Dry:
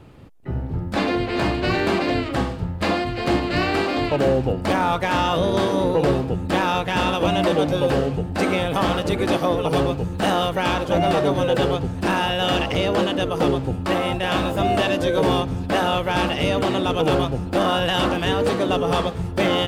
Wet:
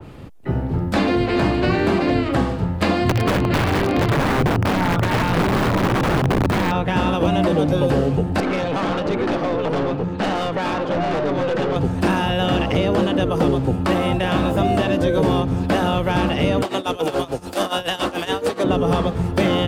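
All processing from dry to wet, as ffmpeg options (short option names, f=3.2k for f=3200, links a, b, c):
-filter_complex "[0:a]asettb=1/sr,asplit=3[a][b][c];[a]atrim=end=3.014[d];[b]atrim=start=3.01:end=6.72,asetpts=PTS-STARTPTS,afade=t=in:d=0.004:c=qsin,afade=t=out:st=3.706:d=0.004:c=qsin,equalizer=f=110:t=o:w=0.87:g=14,asplit=2[e][f];[f]adelay=36,volume=-10.5dB[g];[e][g]amix=inputs=2:normalize=0,atrim=end_sample=163611,aeval=exprs='(mod(4.22*val(0)+1,2)-1)/4.22':c=same[h];[c]atrim=start=6.716[i];[d][h]acrossfade=d=0.004:c1=hsin:c2=qsin[j];[j][i]acrossfade=d=0.004:c1=qsin:c2=hsin,asettb=1/sr,asplit=3[k][l][m];[k]atrim=end=8.404[n];[l]atrim=start=8.4:end=11.76,asetpts=PTS-STARTPTS,afade=t=in:d=0.004:c=qsin,afade=t=out:st=3.356:d=0.004:c=qsin,highpass=160,lowpass=3.9k,aeval=exprs='(tanh(14.1*val(0)+0.15)-tanh(0.15))/14.1':c=same[o];[m]atrim=start=11.756[p];[n][o]acrossfade=d=0.004:c1=hsin:c2=qsin[q];[q][p]acrossfade=d=0.004:c1=qsin:c2=hsin,asettb=1/sr,asplit=3[r][s][t];[r]atrim=end=16.624[u];[s]atrim=start=16.62:end=18.64,asetpts=PTS-STARTPTS,afade=t=in:d=0.004:c=qsin,afade=t=out:st=2.016:d=0.004:c=qsin,bass=f=250:g=-14,treble=f=4k:g=14,tremolo=f=7:d=0.86[v];[t]atrim=start=18.636[w];[u][v]acrossfade=d=0.004:c1=hsin:c2=qsin[x];[x][w]acrossfade=d=0.004:c1=qsin:c2=hsin,acrossover=split=130|300|3900[y][z][aa][ab];[y]acompressor=threshold=-33dB:ratio=4[ac];[z]acompressor=threshold=-27dB:ratio=4[ad];[aa]acompressor=threshold=-28dB:ratio=4[ae];[ab]acompressor=threshold=-44dB:ratio=4[af];[ac][ad][ae][af]amix=inputs=4:normalize=0,adynamicequalizer=threshold=0.00631:dfrequency=2300:dqfactor=0.7:tfrequency=2300:tqfactor=0.7:attack=5:release=100:ratio=0.375:range=2.5:mode=cutabove:tftype=highshelf,volume=7.5dB"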